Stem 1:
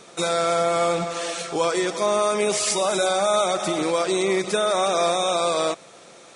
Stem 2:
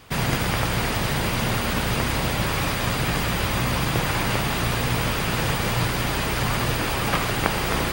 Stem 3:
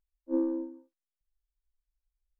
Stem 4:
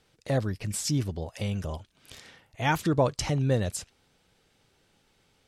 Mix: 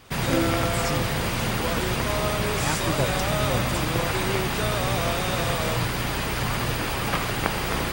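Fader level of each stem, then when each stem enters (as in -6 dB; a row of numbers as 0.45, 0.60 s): -9.0, -2.5, +2.5, -4.5 dB; 0.05, 0.00, 0.00, 0.00 s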